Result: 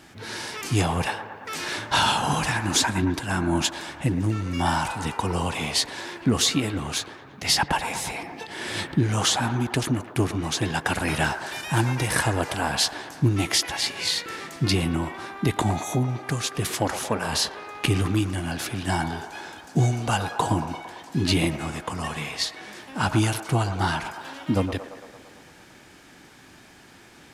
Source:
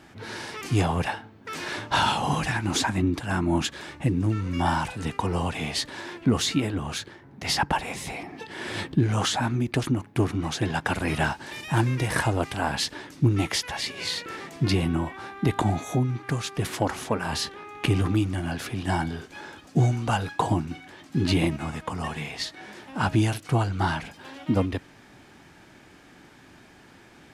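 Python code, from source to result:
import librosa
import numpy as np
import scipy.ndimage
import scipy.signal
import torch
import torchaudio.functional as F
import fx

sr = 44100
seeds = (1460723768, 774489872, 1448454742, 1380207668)

y = fx.high_shelf(x, sr, hz=3300.0, db=8.0)
y = fx.echo_wet_bandpass(y, sr, ms=113, feedback_pct=68, hz=880.0, wet_db=-8.5)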